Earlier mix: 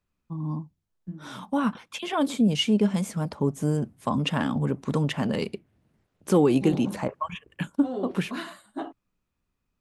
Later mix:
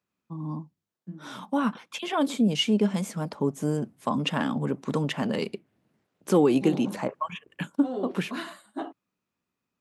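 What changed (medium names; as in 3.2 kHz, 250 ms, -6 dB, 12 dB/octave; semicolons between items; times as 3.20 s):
first voice: add peaking EQ 9.3 kHz -3.5 dB 0.23 oct; master: add high-pass 170 Hz 12 dB/octave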